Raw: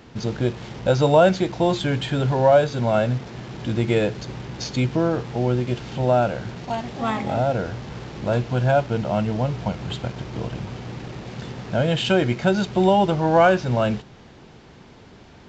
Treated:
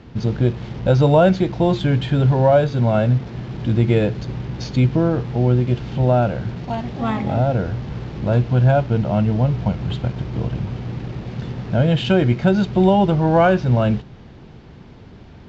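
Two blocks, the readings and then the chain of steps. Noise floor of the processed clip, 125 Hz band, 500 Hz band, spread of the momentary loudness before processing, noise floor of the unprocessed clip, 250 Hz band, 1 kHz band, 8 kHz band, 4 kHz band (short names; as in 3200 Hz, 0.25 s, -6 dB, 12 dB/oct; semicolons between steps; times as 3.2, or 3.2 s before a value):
-42 dBFS, +7.0 dB, +1.0 dB, 15 LU, -47 dBFS, +4.5 dB, 0.0 dB, n/a, -2.0 dB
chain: LPF 5100 Hz 12 dB/oct; low shelf 250 Hz +10.5 dB; gain -1 dB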